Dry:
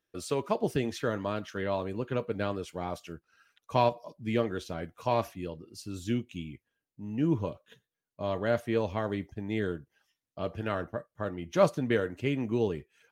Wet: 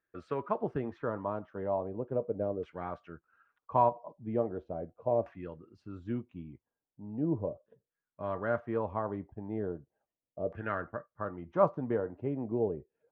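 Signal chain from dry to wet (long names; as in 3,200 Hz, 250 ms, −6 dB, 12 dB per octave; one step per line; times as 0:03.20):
auto-filter low-pass saw down 0.38 Hz 530–1,700 Hz
level −5.5 dB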